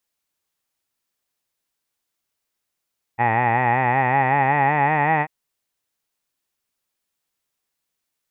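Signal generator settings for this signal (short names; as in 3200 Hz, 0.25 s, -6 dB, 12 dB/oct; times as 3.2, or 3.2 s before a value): formant vowel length 2.09 s, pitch 114 Hz, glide +5.5 st, F1 830 Hz, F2 1900 Hz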